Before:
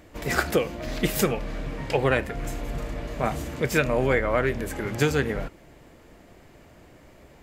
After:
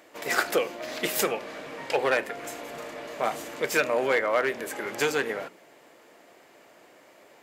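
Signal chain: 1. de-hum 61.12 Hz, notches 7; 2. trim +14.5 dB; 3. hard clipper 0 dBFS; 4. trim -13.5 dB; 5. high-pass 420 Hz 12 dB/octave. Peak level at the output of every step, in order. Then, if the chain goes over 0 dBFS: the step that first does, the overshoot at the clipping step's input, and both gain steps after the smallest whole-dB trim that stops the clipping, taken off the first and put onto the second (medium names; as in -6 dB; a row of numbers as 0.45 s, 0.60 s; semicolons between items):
-8.0 dBFS, +6.5 dBFS, 0.0 dBFS, -13.5 dBFS, -9.5 dBFS; step 2, 6.5 dB; step 2 +7.5 dB, step 4 -6.5 dB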